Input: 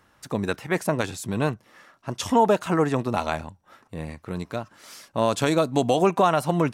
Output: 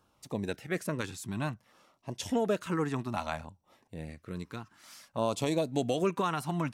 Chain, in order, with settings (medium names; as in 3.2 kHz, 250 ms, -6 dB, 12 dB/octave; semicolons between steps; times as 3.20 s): LFO notch saw down 0.58 Hz 330–2000 Hz; trim -7.5 dB